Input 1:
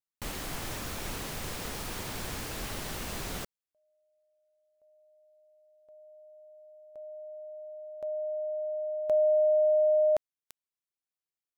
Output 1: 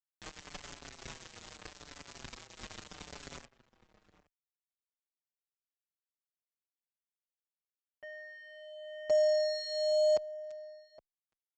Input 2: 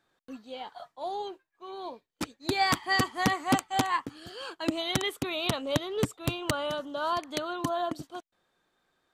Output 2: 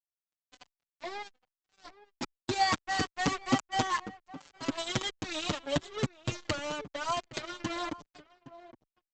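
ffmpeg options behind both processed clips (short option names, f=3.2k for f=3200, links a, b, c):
-filter_complex "[0:a]aeval=exprs='0.224*(cos(1*acos(clip(val(0)/0.224,-1,1)))-cos(1*PI/2))+0.00447*(cos(7*acos(clip(val(0)/0.224,-1,1)))-cos(7*PI/2))':c=same,aresample=16000,acrusher=bits=4:mix=0:aa=0.5,aresample=44100,asplit=2[a][b];[b]adelay=816.3,volume=-17dB,highshelf=f=4k:g=-18.4[c];[a][c]amix=inputs=2:normalize=0,asplit=2[d][e];[e]adelay=5.8,afreqshift=-0.8[f];[d][f]amix=inputs=2:normalize=1"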